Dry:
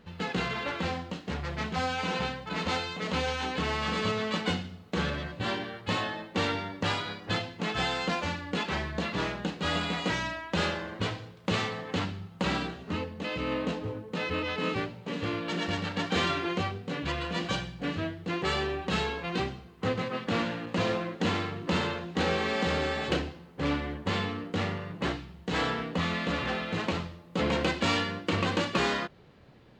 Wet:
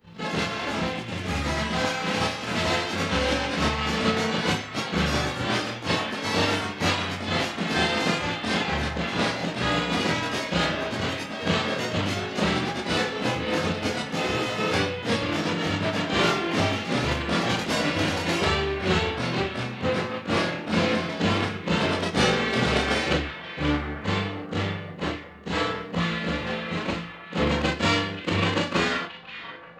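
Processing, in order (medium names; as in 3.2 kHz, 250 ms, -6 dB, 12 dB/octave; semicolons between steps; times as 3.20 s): short-time spectra conjugated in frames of 82 ms; ever faster or slower copies 87 ms, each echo +4 st, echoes 2; on a send: repeats whose band climbs or falls 530 ms, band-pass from 2.6 kHz, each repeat -0.7 oct, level -4.5 dB; on the sum: upward expansion 1.5:1, over -44 dBFS; trim +8 dB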